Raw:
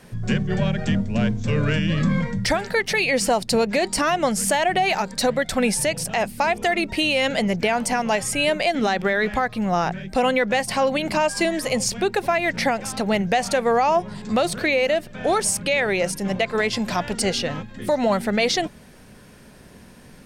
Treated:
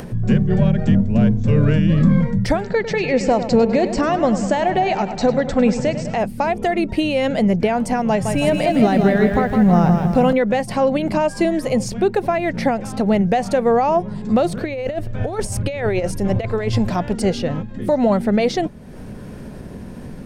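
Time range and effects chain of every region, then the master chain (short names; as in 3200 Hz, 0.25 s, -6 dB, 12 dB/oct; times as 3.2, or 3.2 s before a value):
2.6–6.15 brick-wall FIR low-pass 8200 Hz + darkening echo 0.101 s, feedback 69%, low-pass 4900 Hz, level -11 dB
8.09–10.33 bell 140 Hz +8 dB 0.97 oct + lo-fi delay 0.161 s, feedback 55%, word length 7-bit, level -5 dB
14.64–16.89 resonant low shelf 130 Hz +7.5 dB, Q 3 + negative-ratio compressor -23 dBFS, ratio -0.5
whole clip: tilt shelf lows +7.5 dB; upward compressor, threshold -24 dBFS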